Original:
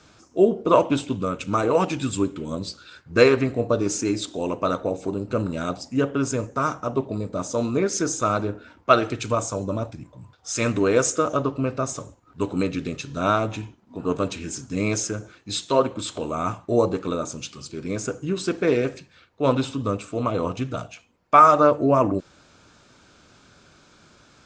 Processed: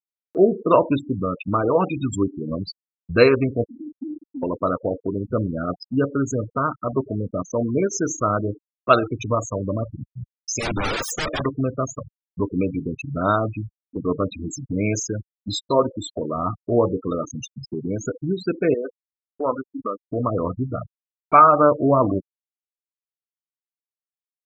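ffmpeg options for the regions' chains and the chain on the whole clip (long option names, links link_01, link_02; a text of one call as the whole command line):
ffmpeg -i in.wav -filter_complex "[0:a]asettb=1/sr,asplit=3[link_01][link_02][link_03];[link_01]atrim=end=3.644[link_04];[link_02]atrim=start=3.64:end=4.43,asetpts=PTS-STARTPTS,afade=type=in:duration=0.004:curve=qsin,afade=type=out:start_time=0.786:duration=0.004:curve=qsin,asplit=3[link_05][link_06][link_07];[link_05]bandpass=frequency=270:width_type=q:width=8,volume=0dB[link_08];[link_06]bandpass=frequency=2290:width_type=q:width=8,volume=-6dB[link_09];[link_07]bandpass=frequency=3010:width_type=q:width=8,volume=-9dB[link_10];[link_08][link_09][link_10]amix=inputs=3:normalize=0,acompressor=threshold=-36dB:ratio=4:attack=3.2:release=140:knee=1:detection=peak[link_11];[link_03]atrim=start=4.426[link_12];[link_04][link_11]acrossfade=duration=0.004:curve1=hsin:curve2=qsin[link_13];[link_13][link_12]acrossfade=duration=0.004:curve1=qsin:curve2=hsin,asettb=1/sr,asplit=3[link_14][link_15][link_16];[link_14]atrim=end=10.594[link_17];[link_15]atrim=start=10.59:end=11.46,asetpts=PTS-STARTPTS,afade=type=in:duration=0.004:curve=qsin,afade=type=out:start_time=0.866:duration=0.004:curve=qsin,highshelf=frequency=3800:gain=10,aeval=exprs='(mod(8.91*val(0)+1,2)-1)/8.91':channel_layout=same[link_18];[link_16]atrim=start=11.456[link_19];[link_17][link_18]acrossfade=duration=0.004:curve1=hsin:curve2=qsin[link_20];[link_20][link_19]acrossfade=duration=0.004:curve1=qsin:curve2=hsin,asettb=1/sr,asplit=3[link_21][link_22][link_23];[link_21]atrim=end=18.744[link_24];[link_22]atrim=start=18.74:end=20.03,asetpts=PTS-STARTPTS,afade=type=in:duration=0.004:curve=qsin,afade=type=out:start_time=1.286:duration=0.004:curve=qsin,bandpass=frequency=1300:width_type=q:width=0.61,aemphasis=mode=reproduction:type=50fm[link_25];[link_23]atrim=start=20.026[link_26];[link_24][link_25]acrossfade=duration=0.004:curve1=hsin:curve2=qsin[link_27];[link_27][link_26]acrossfade=duration=0.004:curve1=qsin:curve2=hsin,afftfilt=real='re*gte(hypot(re,im),0.0794)':imag='im*gte(hypot(re,im),0.0794)':win_size=1024:overlap=0.75,lowshelf=frequency=63:gain=7.5,acompressor=mode=upward:threshold=-23dB:ratio=2.5,volume=1dB" out.wav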